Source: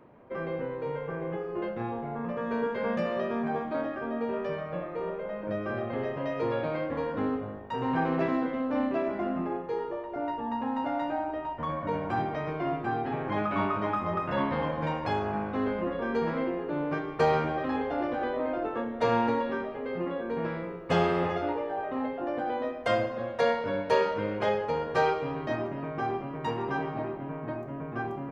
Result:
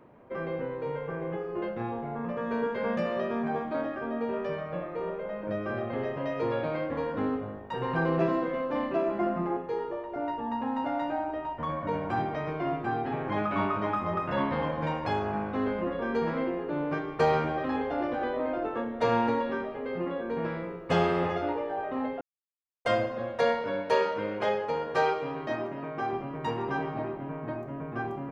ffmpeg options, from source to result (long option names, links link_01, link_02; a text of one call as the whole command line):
ffmpeg -i in.wav -filter_complex "[0:a]asettb=1/sr,asplit=3[link_01][link_02][link_03];[link_01]atrim=end=7.724[link_04];[link_02]atrim=start=7.72:end=9.57,asetpts=PTS-STARTPTS,afade=type=in:duration=0.004:curve=qsin,afade=type=out:start_time=1.846:duration=0.004:curve=qsin,aecho=1:1:5.8:0.65,atrim=end_sample=81585[link_05];[link_03]atrim=start=9.566[link_06];[link_04][link_05]acrossfade=duration=0.004:curve1=hsin:curve2=qsin[link_07];[link_07][link_06]acrossfade=duration=0.004:curve1=qsin:curve2=hsin,asettb=1/sr,asplit=3[link_08][link_09][link_10];[link_08]atrim=end=23.634[link_11];[link_09]atrim=start=23.63:end=26.13,asetpts=PTS-STARTPTS,afade=type=in:duration=0.004:curve=qsin,afade=type=out:start_time=2.496:duration=0.004:curve=qsin,lowshelf=frequency=120:gain=-12[link_12];[link_10]atrim=start=26.126[link_13];[link_11][link_12]acrossfade=duration=0.004:curve1=hsin:curve2=qsin[link_14];[link_14][link_13]acrossfade=duration=0.004:curve1=qsin:curve2=hsin,asplit=3[link_15][link_16][link_17];[link_15]atrim=end=22.21,asetpts=PTS-STARTPTS,afade=type=out:start_time=22.206:duration=0.004:curve=hsin[link_18];[link_16]atrim=start=22.21:end=22.85,asetpts=PTS-STARTPTS,volume=0[link_19];[link_17]atrim=start=22.85,asetpts=PTS-STARTPTS,afade=type=in:duration=0.004:curve=hsin[link_20];[link_18][link_19][link_20]concat=n=3:v=0:a=1" out.wav